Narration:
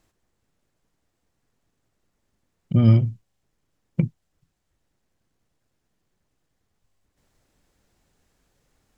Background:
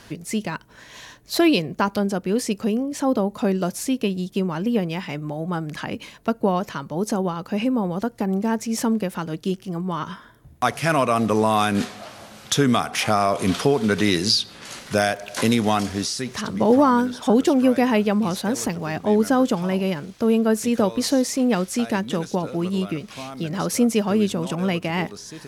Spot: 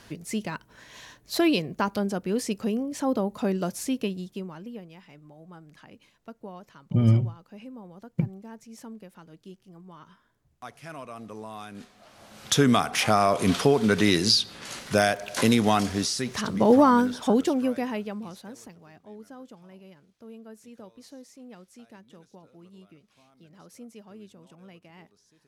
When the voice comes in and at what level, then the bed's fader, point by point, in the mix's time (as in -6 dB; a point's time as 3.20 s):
4.20 s, -4.5 dB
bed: 4.00 s -5 dB
4.88 s -21 dB
11.88 s -21 dB
12.47 s -1.5 dB
17.10 s -1.5 dB
19.07 s -26.5 dB